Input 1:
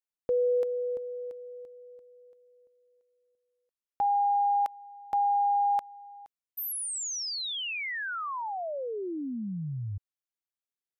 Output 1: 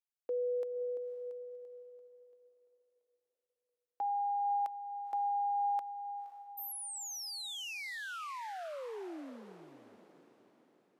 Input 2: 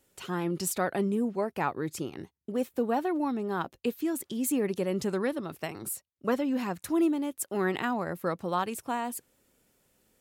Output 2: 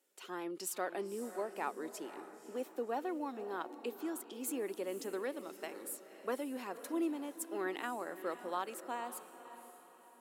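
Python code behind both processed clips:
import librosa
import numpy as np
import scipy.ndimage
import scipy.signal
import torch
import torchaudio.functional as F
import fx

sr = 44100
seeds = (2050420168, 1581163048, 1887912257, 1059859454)

y = scipy.signal.sosfilt(scipy.signal.butter(4, 290.0, 'highpass', fs=sr, output='sos'), x)
y = fx.echo_diffused(y, sr, ms=530, feedback_pct=43, wet_db=-12.0)
y = F.gain(torch.from_numpy(y), -8.5).numpy()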